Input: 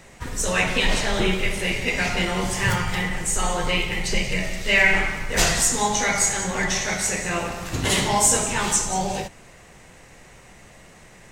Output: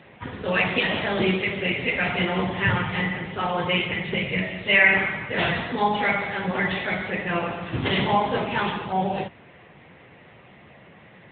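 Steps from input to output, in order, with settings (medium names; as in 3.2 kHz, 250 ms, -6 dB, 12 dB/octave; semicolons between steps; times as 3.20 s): trim +1.5 dB; AMR-NB 10.2 kbps 8 kHz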